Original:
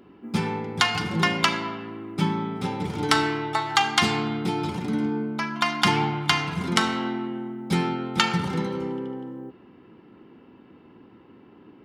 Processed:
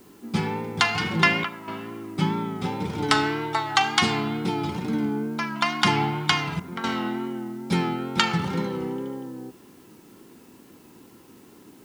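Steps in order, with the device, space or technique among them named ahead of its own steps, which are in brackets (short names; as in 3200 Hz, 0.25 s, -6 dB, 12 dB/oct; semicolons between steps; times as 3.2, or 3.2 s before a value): worn cassette (LPF 9700 Hz; wow and flutter; level dips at 1.44/6.6, 0.236 s -10 dB; white noise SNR 32 dB); 0.98–1.48 dynamic EQ 2400 Hz, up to +6 dB, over -37 dBFS, Q 0.79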